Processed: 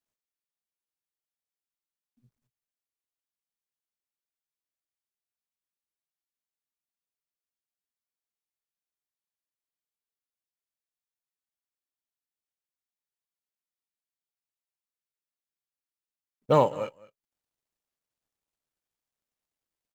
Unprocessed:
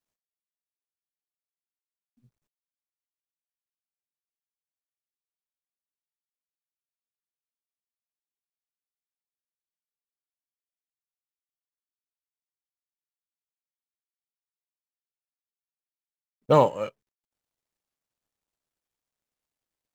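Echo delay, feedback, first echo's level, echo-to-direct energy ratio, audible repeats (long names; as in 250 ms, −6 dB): 207 ms, repeats not evenly spaced, −20.5 dB, −20.5 dB, 1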